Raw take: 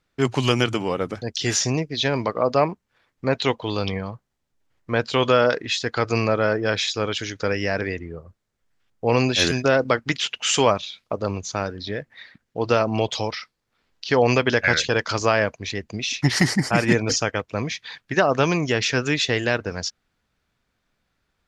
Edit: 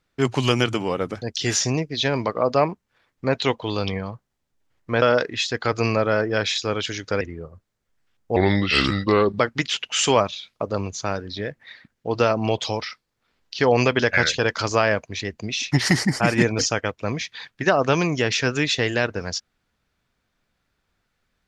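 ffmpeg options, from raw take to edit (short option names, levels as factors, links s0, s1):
-filter_complex "[0:a]asplit=5[s0][s1][s2][s3][s4];[s0]atrim=end=5.022[s5];[s1]atrim=start=5.338:end=7.532[s6];[s2]atrim=start=7.938:end=9.094[s7];[s3]atrim=start=9.09:end=9.89,asetpts=PTS-STARTPTS,asetrate=34398,aresample=44100[s8];[s4]atrim=start=9.886[s9];[s5][s6]acrossfade=d=0.004:c1=hsin:c2=hsin[s10];[s10][s7]acrossfade=d=0.004:c1=hsin:c2=hsin[s11];[s11][s8]acrossfade=d=0.004:c1=hsin:c2=hsin[s12];[s12][s9]acrossfade=d=0.004:c1=hsin:c2=hsin"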